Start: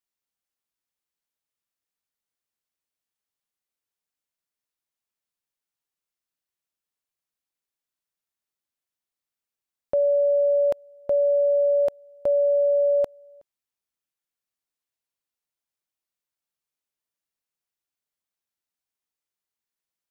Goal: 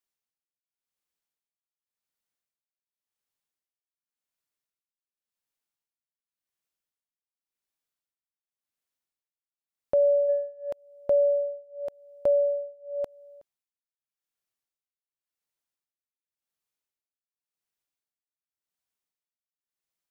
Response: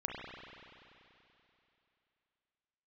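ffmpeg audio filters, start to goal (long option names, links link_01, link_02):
-filter_complex "[0:a]asplit=3[link_01][link_02][link_03];[link_01]afade=type=out:start_time=10.28:duration=0.02[link_04];[link_02]acontrast=37,afade=type=in:start_time=10.28:duration=0.02,afade=type=out:start_time=10.72:duration=0.02[link_05];[link_03]afade=type=in:start_time=10.72:duration=0.02[link_06];[link_04][link_05][link_06]amix=inputs=3:normalize=0,tremolo=f=0.9:d=0.98"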